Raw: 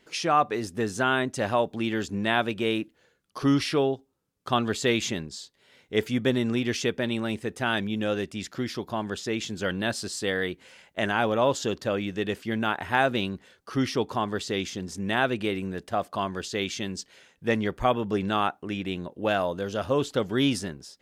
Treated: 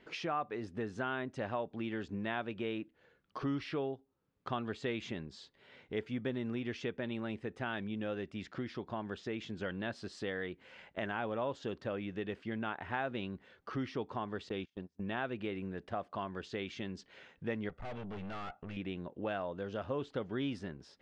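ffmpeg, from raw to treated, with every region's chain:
ffmpeg -i in.wav -filter_complex "[0:a]asettb=1/sr,asplit=3[link_01][link_02][link_03];[link_01]atrim=end=14.494[link_04];[link_02]atrim=start=14.49:end=15.18,asetpts=PTS-STARTPTS,afade=type=in:duration=0.004:curve=qsin,afade=type=out:start_time=0.686:duration=0.004:curve=qsin,agate=range=-34dB:threshold=-33dB:ratio=16:release=100:detection=peak,lowpass=7900,bandreject=frequency=2000:width=9.1[link_05];[link_03]atrim=start=15.176[link_06];[link_04][link_05]acrossfade=duration=0.004:curve1=hsin:curve2=qsin[link_07];[link_07][link_06]acrossfade=duration=0.004:curve1=qsin:curve2=hsin,asettb=1/sr,asplit=3[link_08][link_09][link_10];[link_08]atrim=end=17.694[link_11];[link_09]atrim=start=17.69:end=18.77,asetpts=PTS-STARTPTS,afade=type=in:duration=0.004:curve=qsin,afade=type=out:start_time=1.076:duration=0.004:curve=qsin,aecho=1:1:1.5:0.63,atrim=end_sample=47628,aeval=exprs='(tanh(56.2*val(0)+0.55)-tanh(0.55))/56.2':channel_layout=same[link_12];[link_10]atrim=start=18.766[link_13];[link_11][link_12]acrossfade=duration=0.004:curve1=hsin:curve2=qsin[link_14];[link_14][link_13]acrossfade=duration=0.004:curve1=qsin:curve2=hsin,lowpass=2800,acompressor=threshold=-46dB:ratio=2,volume=1dB" out.wav

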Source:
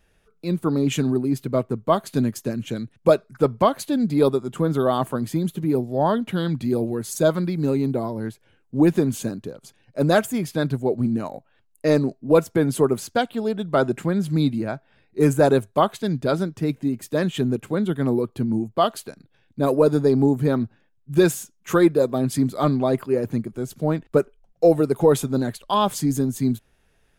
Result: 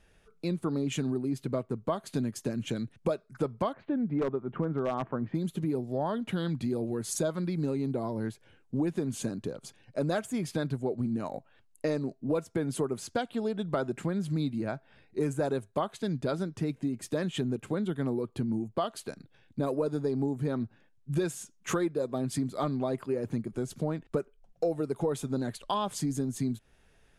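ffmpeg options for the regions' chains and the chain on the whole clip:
ffmpeg -i in.wav -filter_complex "[0:a]asettb=1/sr,asplit=3[link_01][link_02][link_03];[link_01]atrim=end=3.734[link_04];[link_02]atrim=start=3.73:end=5.35,asetpts=PTS-STARTPTS,afade=type=in:duration=0.004:curve=qsin,afade=type=out:start_time=1.616:duration=0.004:curve=qsin,lowpass=frequency=2100:width=0.5412,lowpass=frequency=2100:width=1.3066,aeval=exprs='0.266*(abs(mod(val(0)/0.266+3,4)-2)-1)':channel_layout=same[link_05];[link_03]atrim=start=5.346[link_06];[link_04][link_05]acrossfade=duration=0.004:curve1=hsin:curve2=qsin[link_07];[link_07][link_06]acrossfade=duration=0.004:curve1=qsin:curve2=hsin,lowpass=frequency=11000:width=0.5412,lowpass=frequency=11000:width=1.3066,acompressor=threshold=-29dB:ratio=4" out.wav

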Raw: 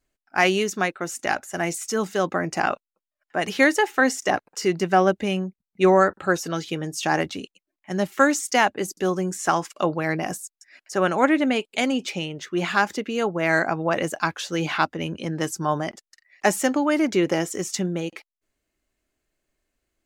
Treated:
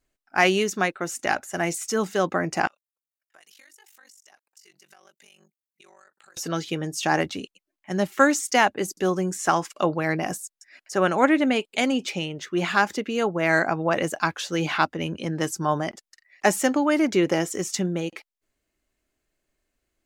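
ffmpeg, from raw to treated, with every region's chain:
ffmpeg -i in.wav -filter_complex "[0:a]asettb=1/sr,asplit=3[link_01][link_02][link_03];[link_01]atrim=end=2.674[link_04];[link_02]atrim=start=2.67:end=6.37,asetpts=PTS-STARTPTS,afade=type=in:duration=0.004:curve=qsin,afade=type=out:start_time=3.696:duration=0.004:curve=qsin,aderivative,acompressor=threshold=-47dB:ratio=12:attack=3.2:release=140:knee=1:detection=peak,aeval=exprs='val(0)*sin(2*PI*24*n/s)':channel_layout=same[link_05];[link_03]atrim=start=6.366[link_06];[link_04][link_05]acrossfade=duration=0.004:curve1=hsin:curve2=qsin[link_07];[link_07][link_06]acrossfade=duration=0.004:curve1=qsin:curve2=hsin" out.wav

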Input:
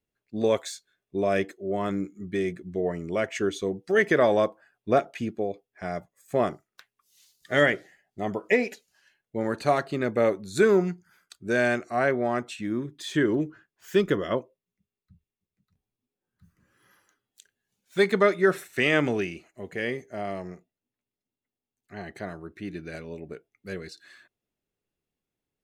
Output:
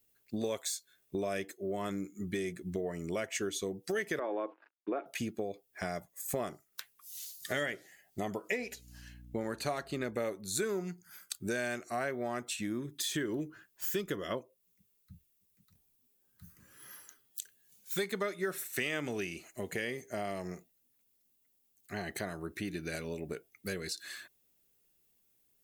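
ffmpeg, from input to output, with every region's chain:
ffmpeg -i in.wav -filter_complex "[0:a]asettb=1/sr,asplit=3[link_01][link_02][link_03];[link_01]atrim=end=4.194[link_04];[link_02]atrim=start=4.19:end=5.06,asetpts=PTS-STARTPTS,afade=type=in:duration=0.004:curve=qsin,afade=type=out:start_time=0.866:duration=0.004:curve=qsin,acrusher=bits=8:mix=0:aa=0.5,highpass=frequency=300:width=0.5412,highpass=frequency=300:width=1.3066,equalizer=frequency=310:width_type=q:width=4:gain=8,equalizer=frequency=640:width_type=q:width=4:gain=-3,equalizer=frequency=930:width_type=q:width=4:gain=4,equalizer=frequency=1900:width_type=q:width=4:gain=-6,lowpass=frequency=2300:width=0.5412,lowpass=frequency=2300:width=1.3066,acompressor=threshold=-26dB:ratio=1.5:attack=3.2:release=140:knee=1:detection=peak[link_05];[link_03]atrim=start=5.056[link_06];[link_04][link_05]acrossfade=duration=0.004:curve1=hsin:curve2=qsin[link_07];[link_07][link_06]acrossfade=duration=0.004:curve1=qsin:curve2=hsin,asettb=1/sr,asplit=3[link_08][link_09][link_10];[link_08]atrim=end=8.584[link_11];[link_09]atrim=start=8.58:end=10.16,asetpts=PTS-STARTPTS,afade=type=in:duration=0.004:curve=qsin,afade=type=out:start_time=1.576:duration=0.004:curve=qsin,highshelf=frequency=7600:gain=-6,aeval=exprs='val(0)+0.002*(sin(2*PI*60*n/s)+sin(2*PI*2*60*n/s)/2+sin(2*PI*3*60*n/s)/3+sin(2*PI*4*60*n/s)/4+sin(2*PI*5*60*n/s)/5)':channel_layout=same[link_12];[link_10]atrim=start=10.156[link_13];[link_11][link_12]acrossfade=duration=0.004:curve1=hsin:curve2=qsin[link_14];[link_14][link_13]acrossfade=duration=0.004:curve1=qsin:curve2=hsin,aemphasis=mode=production:type=75fm,acompressor=threshold=-39dB:ratio=4,volume=4dB" out.wav

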